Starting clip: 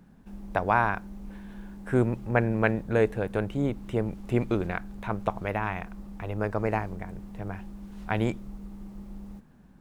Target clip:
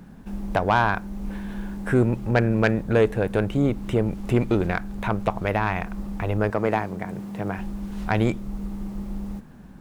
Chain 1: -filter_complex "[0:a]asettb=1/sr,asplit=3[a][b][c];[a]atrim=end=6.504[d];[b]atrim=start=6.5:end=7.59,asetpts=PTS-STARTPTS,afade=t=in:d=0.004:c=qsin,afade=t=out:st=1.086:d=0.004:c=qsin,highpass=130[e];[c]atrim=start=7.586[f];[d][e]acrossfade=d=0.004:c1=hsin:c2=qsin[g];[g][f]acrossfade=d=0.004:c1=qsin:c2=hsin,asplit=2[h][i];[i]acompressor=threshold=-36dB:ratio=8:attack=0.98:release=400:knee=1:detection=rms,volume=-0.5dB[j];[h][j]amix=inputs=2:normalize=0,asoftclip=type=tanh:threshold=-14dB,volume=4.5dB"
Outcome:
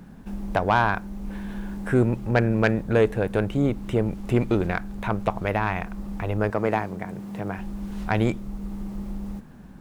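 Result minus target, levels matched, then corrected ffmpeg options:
compressor: peak gain reduction +6 dB
-filter_complex "[0:a]asettb=1/sr,asplit=3[a][b][c];[a]atrim=end=6.504[d];[b]atrim=start=6.5:end=7.59,asetpts=PTS-STARTPTS,afade=t=in:d=0.004:c=qsin,afade=t=out:st=1.086:d=0.004:c=qsin,highpass=130[e];[c]atrim=start=7.586[f];[d][e]acrossfade=d=0.004:c1=hsin:c2=qsin[g];[g][f]acrossfade=d=0.004:c1=qsin:c2=hsin,asplit=2[h][i];[i]acompressor=threshold=-29dB:ratio=8:attack=0.98:release=400:knee=1:detection=rms,volume=-0.5dB[j];[h][j]amix=inputs=2:normalize=0,asoftclip=type=tanh:threshold=-14dB,volume=4.5dB"

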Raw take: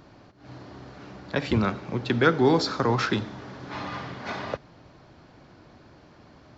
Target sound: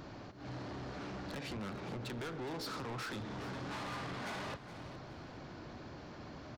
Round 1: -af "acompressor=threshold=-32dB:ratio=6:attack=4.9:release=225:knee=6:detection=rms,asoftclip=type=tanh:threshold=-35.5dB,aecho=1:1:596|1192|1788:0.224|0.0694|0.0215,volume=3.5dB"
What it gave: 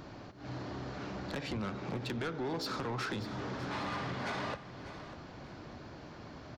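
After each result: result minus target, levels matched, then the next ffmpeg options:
echo 0.18 s late; soft clip: distortion -5 dB
-af "acompressor=threshold=-32dB:ratio=6:attack=4.9:release=225:knee=6:detection=rms,asoftclip=type=tanh:threshold=-35.5dB,aecho=1:1:416|832|1248:0.224|0.0694|0.0215,volume=3.5dB"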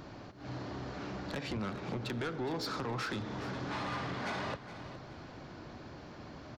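soft clip: distortion -5 dB
-af "acompressor=threshold=-32dB:ratio=6:attack=4.9:release=225:knee=6:detection=rms,asoftclip=type=tanh:threshold=-43dB,aecho=1:1:416|832|1248:0.224|0.0694|0.0215,volume=3.5dB"

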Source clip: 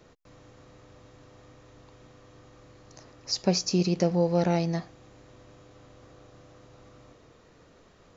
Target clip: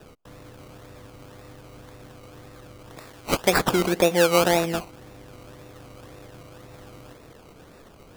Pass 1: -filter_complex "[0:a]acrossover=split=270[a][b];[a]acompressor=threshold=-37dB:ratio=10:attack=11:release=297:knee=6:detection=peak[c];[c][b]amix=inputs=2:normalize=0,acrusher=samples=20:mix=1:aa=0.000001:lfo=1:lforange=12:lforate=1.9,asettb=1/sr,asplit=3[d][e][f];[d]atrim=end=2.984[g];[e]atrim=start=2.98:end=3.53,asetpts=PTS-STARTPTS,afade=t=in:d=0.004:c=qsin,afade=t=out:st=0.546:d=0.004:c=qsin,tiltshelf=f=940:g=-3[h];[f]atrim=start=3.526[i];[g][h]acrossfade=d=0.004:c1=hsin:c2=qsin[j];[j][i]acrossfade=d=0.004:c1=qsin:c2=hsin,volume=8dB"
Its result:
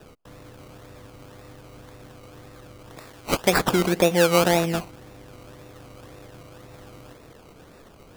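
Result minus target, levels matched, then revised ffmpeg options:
compressor: peak gain reduction -7 dB
-filter_complex "[0:a]acrossover=split=270[a][b];[a]acompressor=threshold=-45dB:ratio=10:attack=11:release=297:knee=6:detection=peak[c];[c][b]amix=inputs=2:normalize=0,acrusher=samples=20:mix=1:aa=0.000001:lfo=1:lforange=12:lforate=1.9,asettb=1/sr,asplit=3[d][e][f];[d]atrim=end=2.984[g];[e]atrim=start=2.98:end=3.53,asetpts=PTS-STARTPTS,afade=t=in:d=0.004:c=qsin,afade=t=out:st=0.546:d=0.004:c=qsin,tiltshelf=f=940:g=-3[h];[f]atrim=start=3.526[i];[g][h]acrossfade=d=0.004:c1=hsin:c2=qsin[j];[j][i]acrossfade=d=0.004:c1=qsin:c2=hsin,volume=8dB"

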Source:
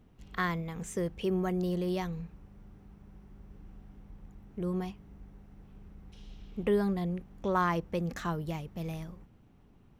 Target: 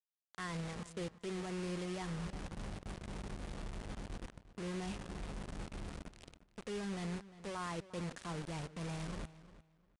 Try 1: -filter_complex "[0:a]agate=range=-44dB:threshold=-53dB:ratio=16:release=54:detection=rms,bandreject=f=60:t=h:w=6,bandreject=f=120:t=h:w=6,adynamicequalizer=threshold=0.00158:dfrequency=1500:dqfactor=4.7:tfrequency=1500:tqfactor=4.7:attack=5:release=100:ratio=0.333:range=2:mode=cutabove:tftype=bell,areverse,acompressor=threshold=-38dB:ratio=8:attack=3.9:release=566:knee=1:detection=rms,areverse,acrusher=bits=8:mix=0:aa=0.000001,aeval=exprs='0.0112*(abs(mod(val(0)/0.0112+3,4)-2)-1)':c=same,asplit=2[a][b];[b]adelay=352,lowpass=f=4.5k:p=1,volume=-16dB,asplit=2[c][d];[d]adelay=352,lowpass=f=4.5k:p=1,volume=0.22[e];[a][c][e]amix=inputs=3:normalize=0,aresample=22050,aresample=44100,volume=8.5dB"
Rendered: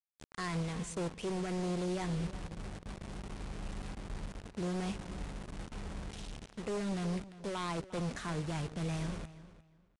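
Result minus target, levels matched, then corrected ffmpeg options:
compressor: peak gain reduction -7.5 dB
-filter_complex "[0:a]agate=range=-44dB:threshold=-53dB:ratio=16:release=54:detection=rms,bandreject=f=60:t=h:w=6,bandreject=f=120:t=h:w=6,adynamicequalizer=threshold=0.00158:dfrequency=1500:dqfactor=4.7:tfrequency=1500:tqfactor=4.7:attack=5:release=100:ratio=0.333:range=2:mode=cutabove:tftype=bell,areverse,acompressor=threshold=-46.5dB:ratio=8:attack=3.9:release=566:knee=1:detection=rms,areverse,acrusher=bits=8:mix=0:aa=0.000001,aeval=exprs='0.0112*(abs(mod(val(0)/0.0112+3,4)-2)-1)':c=same,asplit=2[a][b];[b]adelay=352,lowpass=f=4.5k:p=1,volume=-16dB,asplit=2[c][d];[d]adelay=352,lowpass=f=4.5k:p=1,volume=0.22[e];[a][c][e]amix=inputs=3:normalize=0,aresample=22050,aresample=44100,volume=8.5dB"

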